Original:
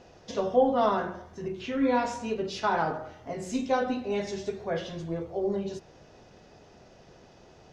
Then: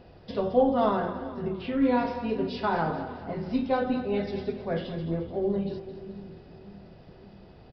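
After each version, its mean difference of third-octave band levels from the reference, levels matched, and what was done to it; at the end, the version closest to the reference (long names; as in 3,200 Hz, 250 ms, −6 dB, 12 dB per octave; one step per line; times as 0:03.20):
4.0 dB: downsampling to 11,025 Hz
low-shelf EQ 270 Hz +9.5 dB
on a send: echo with a time of its own for lows and highs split 300 Hz, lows 585 ms, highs 216 ms, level −12 dB
on the sum: level −2 dB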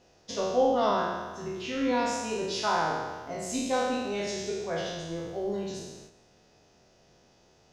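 5.5 dB: peak hold with a decay on every bin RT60 1.39 s
noise gate −45 dBFS, range −7 dB
high-shelf EQ 4,000 Hz +11 dB
level −4.5 dB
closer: first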